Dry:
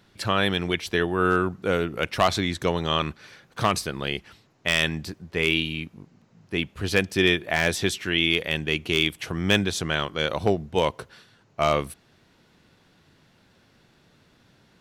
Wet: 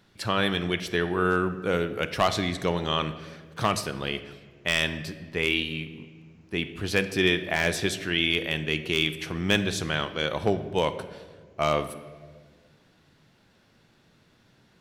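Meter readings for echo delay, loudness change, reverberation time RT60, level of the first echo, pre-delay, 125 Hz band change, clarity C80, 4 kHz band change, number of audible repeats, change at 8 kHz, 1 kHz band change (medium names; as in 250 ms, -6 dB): no echo, -2.0 dB, 1.6 s, no echo, 4 ms, -2.0 dB, 14.0 dB, -2.0 dB, no echo, -2.5 dB, -2.5 dB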